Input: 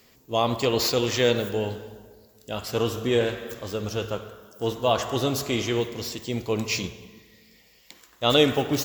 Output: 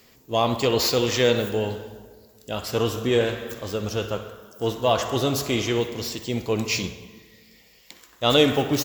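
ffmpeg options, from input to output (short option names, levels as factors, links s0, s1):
-filter_complex "[0:a]aecho=1:1:63|126|189|252:0.158|0.0666|0.028|0.0117,asplit=2[s0][s1];[s1]asoftclip=type=tanh:threshold=0.106,volume=0.299[s2];[s0][s2]amix=inputs=2:normalize=0"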